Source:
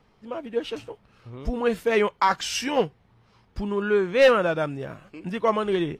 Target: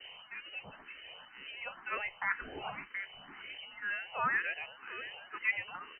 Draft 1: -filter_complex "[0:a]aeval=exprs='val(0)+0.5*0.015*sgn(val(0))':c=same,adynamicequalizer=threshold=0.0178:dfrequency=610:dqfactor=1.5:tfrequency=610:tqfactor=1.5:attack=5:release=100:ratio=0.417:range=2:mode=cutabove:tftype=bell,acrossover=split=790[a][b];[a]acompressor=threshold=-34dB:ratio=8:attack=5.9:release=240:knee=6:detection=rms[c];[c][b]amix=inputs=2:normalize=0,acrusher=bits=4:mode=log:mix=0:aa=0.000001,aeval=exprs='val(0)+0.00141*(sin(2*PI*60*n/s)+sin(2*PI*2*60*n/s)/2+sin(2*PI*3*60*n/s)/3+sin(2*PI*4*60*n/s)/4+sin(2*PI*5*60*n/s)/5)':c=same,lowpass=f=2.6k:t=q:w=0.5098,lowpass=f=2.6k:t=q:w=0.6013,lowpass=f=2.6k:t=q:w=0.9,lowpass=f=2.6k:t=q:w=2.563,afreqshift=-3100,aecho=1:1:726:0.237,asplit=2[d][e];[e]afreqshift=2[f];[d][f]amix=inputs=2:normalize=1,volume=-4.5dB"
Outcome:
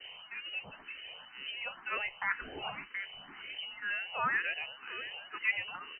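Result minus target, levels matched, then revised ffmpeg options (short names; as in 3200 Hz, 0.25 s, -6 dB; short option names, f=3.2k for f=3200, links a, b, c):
compressor: peak gain reduction -8 dB
-filter_complex "[0:a]aeval=exprs='val(0)+0.5*0.015*sgn(val(0))':c=same,adynamicequalizer=threshold=0.0178:dfrequency=610:dqfactor=1.5:tfrequency=610:tqfactor=1.5:attack=5:release=100:ratio=0.417:range=2:mode=cutabove:tftype=bell,acrossover=split=790[a][b];[a]acompressor=threshold=-43dB:ratio=8:attack=5.9:release=240:knee=6:detection=rms[c];[c][b]amix=inputs=2:normalize=0,acrusher=bits=4:mode=log:mix=0:aa=0.000001,aeval=exprs='val(0)+0.00141*(sin(2*PI*60*n/s)+sin(2*PI*2*60*n/s)/2+sin(2*PI*3*60*n/s)/3+sin(2*PI*4*60*n/s)/4+sin(2*PI*5*60*n/s)/5)':c=same,lowpass=f=2.6k:t=q:w=0.5098,lowpass=f=2.6k:t=q:w=0.6013,lowpass=f=2.6k:t=q:w=0.9,lowpass=f=2.6k:t=q:w=2.563,afreqshift=-3100,aecho=1:1:726:0.237,asplit=2[d][e];[e]afreqshift=2[f];[d][f]amix=inputs=2:normalize=1,volume=-4.5dB"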